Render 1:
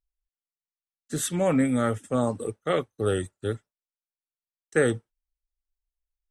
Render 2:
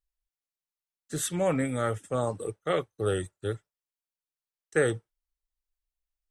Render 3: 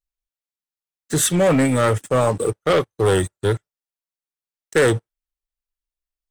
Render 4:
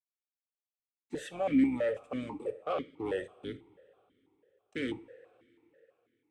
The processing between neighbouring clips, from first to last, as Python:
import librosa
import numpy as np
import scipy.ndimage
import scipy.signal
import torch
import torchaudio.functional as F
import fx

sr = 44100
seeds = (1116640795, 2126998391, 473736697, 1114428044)

y1 = fx.peak_eq(x, sr, hz=240.0, db=-9.5, octaves=0.35)
y1 = y1 * 10.0 ** (-2.0 / 20.0)
y2 = fx.leveller(y1, sr, passes=3)
y2 = y2 * 10.0 ** (3.0 / 20.0)
y3 = fx.octave_divider(y2, sr, octaves=2, level_db=-3.0)
y3 = fx.rev_double_slope(y3, sr, seeds[0], early_s=0.41, late_s=3.8, knee_db=-18, drr_db=12.0)
y3 = fx.vowel_held(y3, sr, hz=6.1)
y3 = y3 * 10.0 ** (-4.5 / 20.0)